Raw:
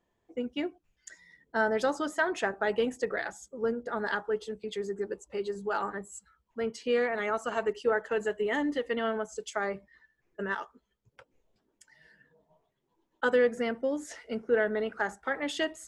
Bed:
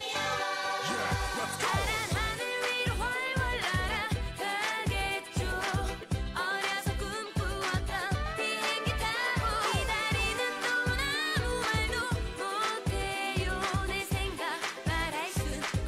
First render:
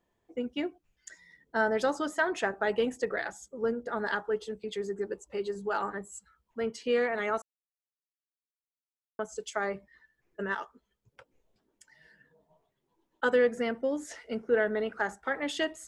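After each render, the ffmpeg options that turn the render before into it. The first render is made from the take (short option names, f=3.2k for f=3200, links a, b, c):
-filter_complex "[0:a]asplit=3[a][b][c];[a]atrim=end=7.42,asetpts=PTS-STARTPTS,afade=t=out:st=7.416:d=0.004:c=hsin[d];[b]atrim=start=7.42:end=9.19,asetpts=PTS-STARTPTS,volume=0[e];[c]atrim=start=9.19,asetpts=PTS-STARTPTS,afade=t=in:d=0.004:c=hsin[f];[d][e][f]concat=n=3:v=0:a=1"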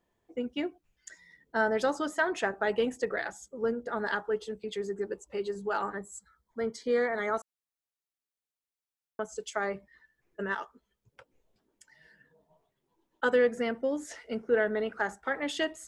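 -filter_complex "[0:a]asettb=1/sr,asplit=3[a][b][c];[a]atrim=end=5.964[d];[b]atrim=start=5.96:end=7.37,asetpts=PTS-STARTPTS,afade=t=in:d=0.004:c=qsin,afade=t=out:st=1.406:d=0.004:c=qsin,asuperstop=centerf=2700:order=4:qfactor=2.9[e];[c]atrim=start=7.366[f];[d][e]acrossfade=d=0.004:c1=hsin:c2=qsin[g];[g][f]acrossfade=d=0.004:c1=qsin:c2=hsin"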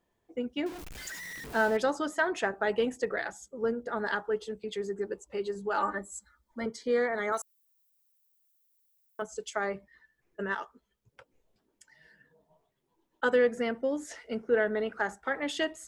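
-filter_complex "[0:a]asettb=1/sr,asplit=3[a][b][c];[a]atrim=end=0.664[d];[b]atrim=start=0.66:end=1.77,asetpts=PTS-STARTPTS,afade=t=in:d=0.004:c=qsin,afade=t=out:st=1.106:d=0.004:c=qsin,aeval=exprs='val(0)+0.5*0.0141*sgn(val(0))':c=same[e];[c]atrim=start=1.766[f];[d][e]acrossfade=d=0.004:c1=hsin:c2=qsin[g];[g][f]acrossfade=d=0.004:c1=qsin:c2=hsin,asettb=1/sr,asplit=3[h][i][j];[h]atrim=end=5.774[k];[i]atrim=start=5.77:end=6.66,asetpts=PTS-STARTPTS,afade=t=in:d=0.004:c=qsin,afade=t=out:st=0.886:d=0.004:c=qsin,aecho=1:1:3.4:0.99,atrim=end_sample=39249[l];[j]atrim=start=6.656[m];[k][l]acrossfade=d=0.004:c1=hsin:c2=qsin[n];[n][m]acrossfade=d=0.004:c1=qsin:c2=hsin,asettb=1/sr,asplit=3[o][p][q];[o]atrim=end=7.324[r];[p]atrim=start=7.32:end=9.22,asetpts=PTS-STARTPTS,afade=t=in:d=0.004:c=qsin,afade=t=out:st=1.896:d=0.004:c=qsin,aemphasis=mode=production:type=riaa[s];[q]atrim=start=9.216[t];[r][s]acrossfade=d=0.004:c1=hsin:c2=qsin[u];[u][t]acrossfade=d=0.004:c1=qsin:c2=hsin"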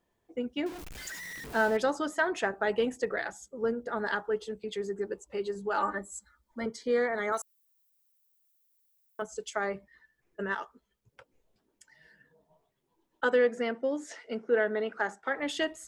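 -filter_complex "[0:a]asettb=1/sr,asplit=3[a][b][c];[a]atrim=end=13.244[d];[b]atrim=start=13.24:end=15.39,asetpts=PTS-STARTPTS,afade=t=in:d=0.004:c=qsin,afade=t=out:st=2.146:d=0.004:c=qsin,highpass=200,lowpass=8k[e];[c]atrim=start=15.386[f];[d][e]acrossfade=d=0.004:c1=hsin:c2=qsin[g];[g][f]acrossfade=d=0.004:c1=qsin:c2=hsin"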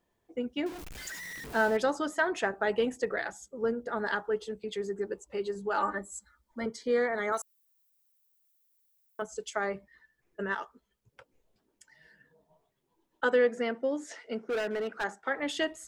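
-filter_complex "[0:a]asettb=1/sr,asplit=3[a][b][c];[a]atrim=end=14.464[d];[b]atrim=start=14.46:end=15.04,asetpts=PTS-STARTPTS,afade=t=in:d=0.004:c=qsin,afade=t=out:st=0.576:d=0.004:c=qsin,asoftclip=type=hard:threshold=-28dB[e];[c]atrim=start=15.036[f];[d][e]acrossfade=d=0.004:c1=hsin:c2=qsin[g];[g][f]acrossfade=d=0.004:c1=qsin:c2=hsin"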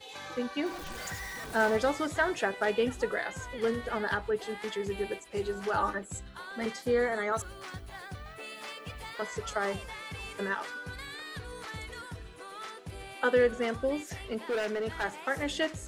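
-filter_complex "[1:a]volume=-11.5dB[a];[0:a][a]amix=inputs=2:normalize=0"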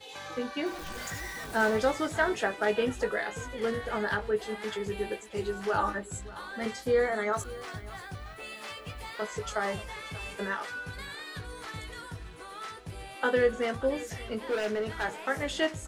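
-filter_complex "[0:a]asplit=2[a][b];[b]adelay=19,volume=-7dB[c];[a][c]amix=inputs=2:normalize=0,aecho=1:1:584:0.126"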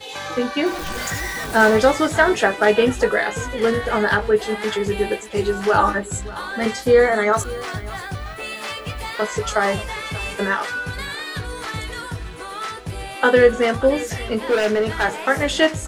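-af "volume=12dB,alimiter=limit=-2dB:level=0:latency=1"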